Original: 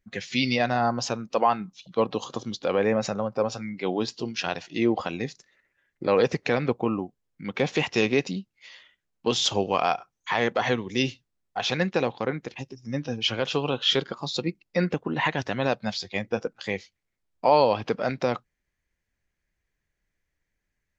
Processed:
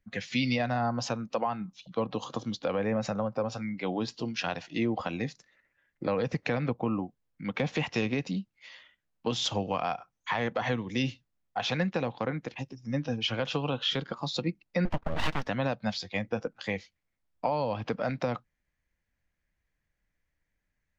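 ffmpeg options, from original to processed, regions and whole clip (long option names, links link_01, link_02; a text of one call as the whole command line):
ffmpeg -i in.wav -filter_complex "[0:a]asettb=1/sr,asplit=3[link_01][link_02][link_03];[link_01]atrim=end=14.854[link_04];[link_02]atrim=start=14.85:end=15.47,asetpts=PTS-STARTPTS,afade=type=in:duration=0.004:curve=qsin,afade=type=out:start_time=0.616:duration=0.004:curve=qsin,agate=range=-33dB:threshold=-45dB:ratio=3:release=100:detection=peak,lowpass=frequency=3500:poles=1,aeval=exprs='abs(val(0))':channel_layout=same[link_05];[link_03]atrim=start=15.466[link_06];[link_04][link_05]acrossfade=duration=0.004:curve1=hsin:curve2=qsin[link_07];[link_07][link_06]acrossfade=duration=0.004:curve1=qsin:curve2=hsin,highshelf=frequency=4200:gain=-7.5,acrossover=split=200[link_08][link_09];[link_09]acompressor=threshold=-26dB:ratio=6[link_10];[link_08][link_10]amix=inputs=2:normalize=0,equalizer=frequency=390:width_type=o:width=0.21:gain=-10" out.wav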